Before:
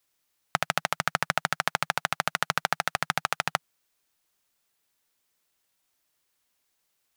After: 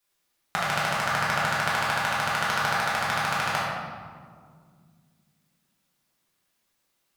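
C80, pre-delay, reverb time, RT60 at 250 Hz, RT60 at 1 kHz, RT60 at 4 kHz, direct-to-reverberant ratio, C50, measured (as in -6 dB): 1.0 dB, 5 ms, 2.1 s, 3.4 s, 1.8 s, 1.0 s, -8.0 dB, -1.5 dB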